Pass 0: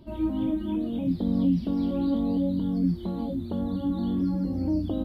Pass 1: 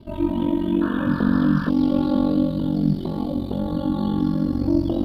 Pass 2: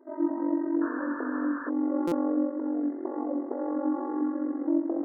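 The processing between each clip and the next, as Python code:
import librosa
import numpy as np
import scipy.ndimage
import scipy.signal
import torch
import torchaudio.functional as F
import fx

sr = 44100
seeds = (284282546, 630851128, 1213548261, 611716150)

y1 = fx.echo_thinned(x, sr, ms=68, feedback_pct=83, hz=290.0, wet_db=-7.0)
y1 = y1 * np.sin(2.0 * np.pi * 23.0 * np.arange(len(y1)) / sr)
y1 = fx.spec_paint(y1, sr, seeds[0], shape='noise', start_s=0.81, length_s=0.89, low_hz=890.0, high_hz=1800.0, level_db=-42.0)
y1 = F.gain(torch.from_numpy(y1), 8.0).numpy()
y2 = fx.brickwall_bandpass(y1, sr, low_hz=260.0, high_hz=2100.0)
y2 = fx.rider(y2, sr, range_db=10, speed_s=2.0)
y2 = fx.buffer_glitch(y2, sr, at_s=(2.07,), block=256, repeats=7)
y2 = F.gain(torch.from_numpy(y2), -4.5).numpy()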